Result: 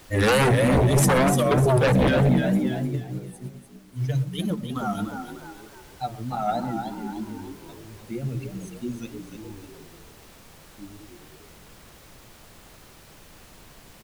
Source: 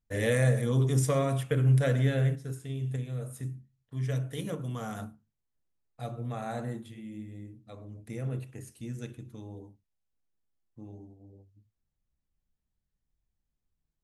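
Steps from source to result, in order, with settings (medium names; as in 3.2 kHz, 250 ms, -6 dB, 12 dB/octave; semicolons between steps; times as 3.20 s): expander on every frequency bin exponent 2; vibrato 3.2 Hz 99 cents; frequency-shifting echo 299 ms, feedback 42%, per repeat +57 Hz, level -8 dB; sine folder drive 13 dB, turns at -15.5 dBFS; resampled via 32 kHz; added noise pink -49 dBFS; on a send at -19.5 dB: reverberation RT60 0.20 s, pre-delay 110 ms; 2.82–4.76 s: on the sum: upward expansion 1.5:1, over -37 dBFS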